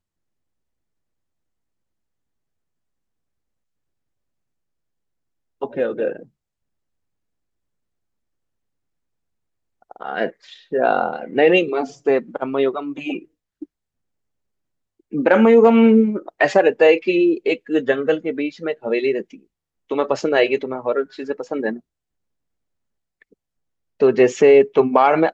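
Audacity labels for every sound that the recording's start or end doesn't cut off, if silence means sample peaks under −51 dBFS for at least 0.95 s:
5.610000	6.280000	sound
9.820000	13.650000	sound
15.000000	21.800000	sound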